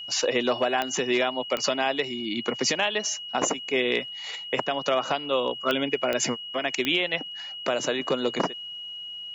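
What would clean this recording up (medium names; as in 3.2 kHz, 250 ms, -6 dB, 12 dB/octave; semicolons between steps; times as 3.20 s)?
de-click; band-stop 2.9 kHz, Q 30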